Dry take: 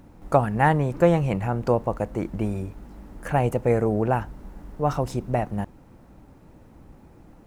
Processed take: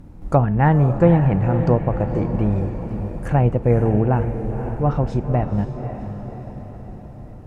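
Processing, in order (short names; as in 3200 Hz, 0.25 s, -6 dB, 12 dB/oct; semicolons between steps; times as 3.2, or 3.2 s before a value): vibrato 0.6 Hz 9.1 cents; treble ducked by the level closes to 2600 Hz, closed at -19 dBFS; low shelf 270 Hz +11.5 dB; de-hum 220.5 Hz, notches 38; on a send: diffused feedback echo 0.524 s, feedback 55%, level -9 dB; on the sum: gain -1 dB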